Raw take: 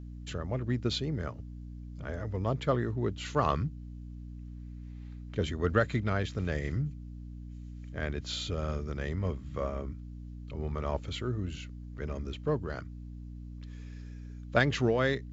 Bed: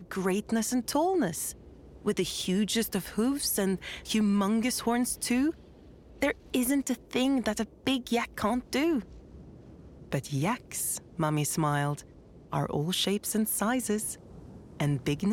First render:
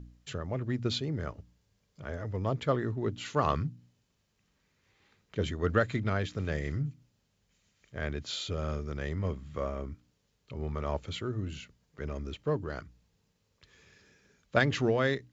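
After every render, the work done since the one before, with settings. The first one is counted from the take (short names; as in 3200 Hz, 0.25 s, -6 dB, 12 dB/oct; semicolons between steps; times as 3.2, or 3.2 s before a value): de-hum 60 Hz, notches 5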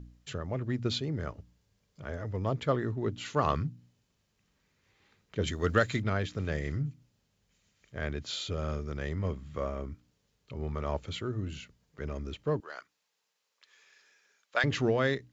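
5.47–6.02 high shelf 3100 Hz +11.5 dB; 12.6–14.64 HPF 810 Hz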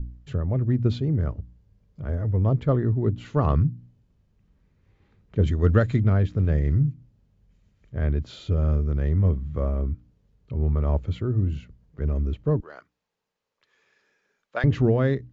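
tilt -4 dB/oct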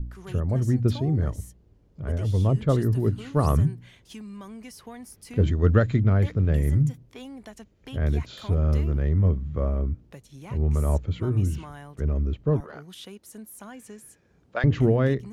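add bed -14.5 dB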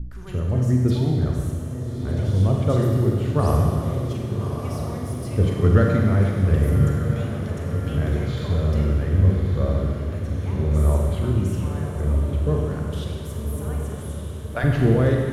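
on a send: diffused feedback echo 1.208 s, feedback 69%, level -8.5 dB; on the sum: Schroeder reverb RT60 1.9 s, combs from 32 ms, DRR 0 dB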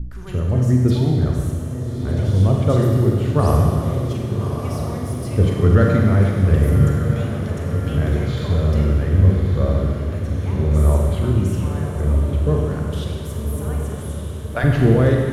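gain +3.5 dB; limiter -3 dBFS, peak gain reduction 2.5 dB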